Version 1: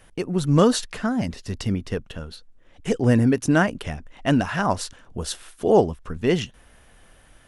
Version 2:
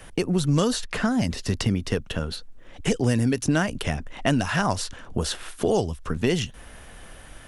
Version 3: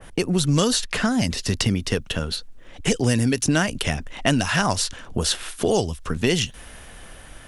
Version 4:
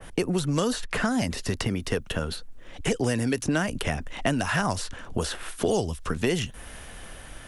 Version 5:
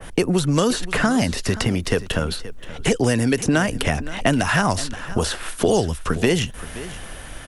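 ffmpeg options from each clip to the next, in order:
-filter_complex "[0:a]acrossover=split=100|3000|6700[a][b][c][d];[a]acompressor=threshold=-40dB:ratio=4[e];[b]acompressor=threshold=-31dB:ratio=4[f];[c]acompressor=threshold=-43dB:ratio=4[g];[d]acompressor=threshold=-47dB:ratio=4[h];[e][f][g][h]amix=inputs=4:normalize=0,volume=8.5dB"
-af "adynamicequalizer=threshold=0.01:dfrequency=2000:dqfactor=0.7:tfrequency=2000:tqfactor=0.7:attack=5:release=100:ratio=0.375:range=3:mode=boostabove:tftype=highshelf,volume=1.5dB"
-filter_complex "[0:a]acrossover=split=340|2200|7900[a][b][c][d];[a]acompressor=threshold=-27dB:ratio=4[e];[b]acompressor=threshold=-24dB:ratio=4[f];[c]acompressor=threshold=-40dB:ratio=4[g];[d]acompressor=threshold=-41dB:ratio=4[h];[e][f][g][h]amix=inputs=4:normalize=0"
-af "aecho=1:1:526:0.158,volume=6.5dB"

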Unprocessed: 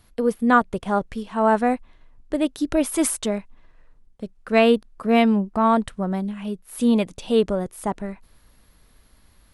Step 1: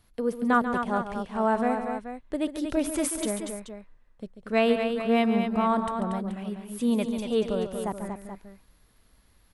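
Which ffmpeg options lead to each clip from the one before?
-af "aecho=1:1:140|235|430:0.299|0.447|0.282,volume=-6.5dB"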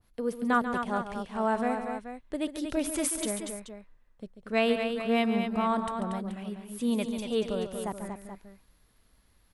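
-af "adynamicequalizer=threshold=0.00891:dfrequency=1800:dqfactor=0.7:tfrequency=1800:tqfactor=0.7:attack=5:release=100:ratio=0.375:range=2:mode=boostabove:tftype=highshelf,volume=-3.5dB"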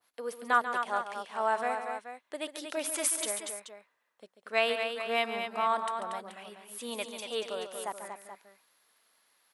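-af "highpass=670,volume=2dB"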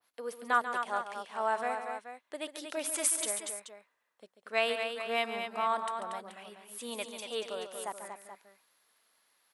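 -af "adynamicequalizer=threshold=0.00447:dfrequency=8300:dqfactor=1.8:tfrequency=8300:tqfactor=1.8:attack=5:release=100:ratio=0.375:range=2:mode=boostabove:tftype=bell,volume=-2dB"

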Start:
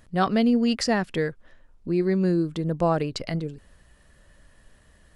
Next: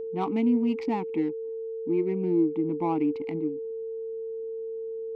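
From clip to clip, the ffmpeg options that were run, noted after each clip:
-filter_complex "[0:a]adynamicsmooth=sensitivity=3:basefreq=870,asplit=3[a][b][c];[a]bandpass=f=300:t=q:w=8,volume=0dB[d];[b]bandpass=f=870:t=q:w=8,volume=-6dB[e];[c]bandpass=f=2.24k:t=q:w=8,volume=-9dB[f];[d][e][f]amix=inputs=3:normalize=0,aeval=exprs='val(0)+0.01*sin(2*PI*450*n/s)':c=same,volume=8.5dB"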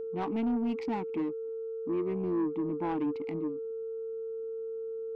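-af "asoftclip=type=tanh:threshold=-23dB,volume=-2.5dB"

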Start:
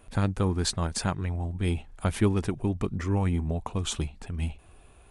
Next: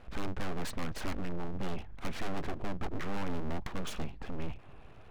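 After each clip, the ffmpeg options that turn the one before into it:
-af "lowpass=2.4k,aeval=exprs='abs(val(0))':c=same,aeval=exprs='(tanh(20*val(0)+0.55)-tanh(0.55))/20':c=same,volume=6.5dB"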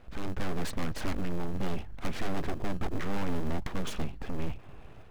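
-filter_complex "[0:a]dynaudnorm=f=200:g=3:m=4.5dB,asplit=2[a][b];[b]acrusher=samples=31:mix=1:aa=0.000001,volume=-10dB[c];[a][c]amix=inputs=2:normalize=0,volume=-2.5dB"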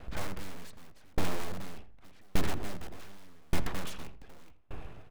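-filter_complex "[0:a]asplit=2[a][b];[b]aeval=exprs='(mod(20*val(0)+1,2)-1)/20':c=same,volume=-7dB[c];[a][c]amix=inputs=2:normalize=0,asplit=2[d][e];[e]adelay=83,lowpass=f=2.1k:p=1,volume=-10.5dB,asplit=2[f][g];[g]adelay=83,lowpass=f=2.1k:p=1,volume=0.35,asplit=2[h][i];[i]adelay=83,lowpass=f=2.1k:p=1,volume=0.35,asplit=2[j][k];[k]adelay=83,lowpass=f=2.1k:p=1,volume=0.35[l];[d][f][h][j][l]amix=inputs=5:normalize=0,aeval=exprs='val(0)*pow(10,-35*if(lt(mod(0.85*n/s,1),2*abs(0.85)/1000),1-mod(0.85*n/s,1)/(2*abs(0.85)/1000),(mod(0.85*n/s,1)-2*abs(0.85)/1000)/(1-2*abs(0.85)/1000))/20)':c=same,volume=4.5dB"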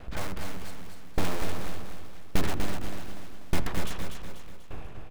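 -af "aecho=1:1:244|488|732|976|1220:0.501|0.221|0.097|0.0427|0.0188,volume=3dB"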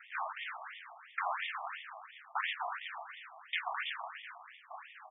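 -af "acrusher=bits=6:mode=log:mix=0:aa=0.000001,afftfilt=real='re*between(b*sr/1024,860*pow(2600/860,0.5+0.5*sin(2*PI*2.9*pts/sr))/1.41,860*pow(2600/860,0.5+0.5*sin(2*PI*2.9*pts/sr))*1.41)':imag='im*between(b*sr/1024,860*pow(2600/860,0.5+0.5*sin(2*PI*2.9*pts/sr))/1.41,860*pow(2600/860,0.5+0.5*sin(2*PI*2.9*pts/sr))*1.41)':win_size=1024:overlap=0.75,volume=5.5dB"

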